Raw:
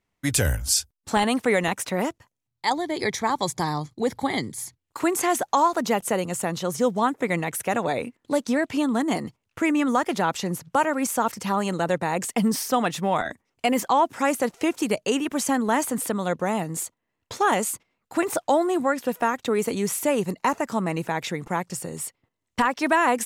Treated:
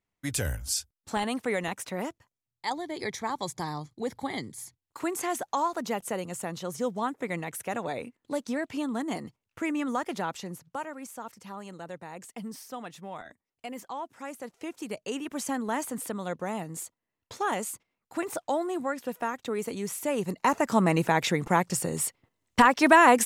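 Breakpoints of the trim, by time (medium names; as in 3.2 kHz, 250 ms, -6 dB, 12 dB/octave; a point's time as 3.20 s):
10.19 s -8 dB
11.07 s -17 dB
14.32 s -17 dB
15.39 s -8 dB
19.99 s -8 dB
20.80 s +3 dB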